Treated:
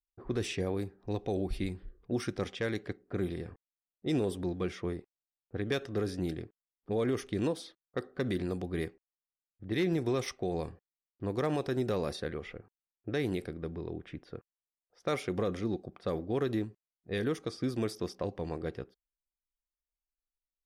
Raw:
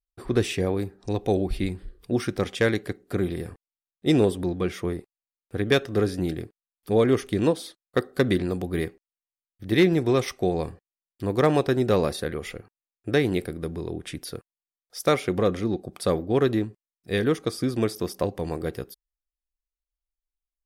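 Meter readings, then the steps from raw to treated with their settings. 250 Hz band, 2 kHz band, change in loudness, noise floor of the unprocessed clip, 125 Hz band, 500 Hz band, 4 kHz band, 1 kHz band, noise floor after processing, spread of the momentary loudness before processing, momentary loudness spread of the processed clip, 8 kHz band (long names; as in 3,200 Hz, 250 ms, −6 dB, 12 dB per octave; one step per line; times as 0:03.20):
−9.0 dB, −10.0 dB, −9.5 dB, below −85 dBFS, −8.5 dB, −10.0 dB, −9.5 dB, −10.0 dB, below −85 dBFS, 14 LU, 11 LU, −9.0 dB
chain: parametric band 5,600 Hz +3 dB 0.28 octaves
brickwall limiter −15 dBFS, peak gain reduction 5.5 dB
low-pass that shuts in the quiet parts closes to 780 Hz, open at −21.5 dBFS
level −7 dB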